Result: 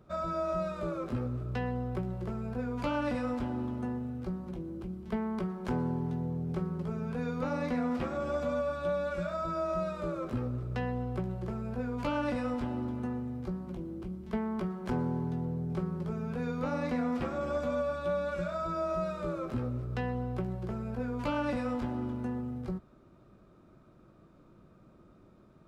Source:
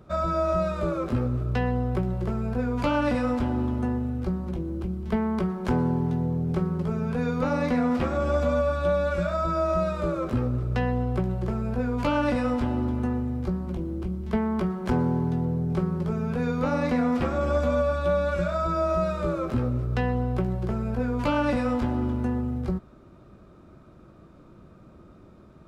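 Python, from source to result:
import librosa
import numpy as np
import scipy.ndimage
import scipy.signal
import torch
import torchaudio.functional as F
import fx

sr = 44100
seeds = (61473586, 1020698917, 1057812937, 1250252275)

y = fx.peak_eq(x, sr, hz=70.0, db=-11.5, octaves=0.31)
y = F.gain(torch.from_numpy(y), -7.5).numpy()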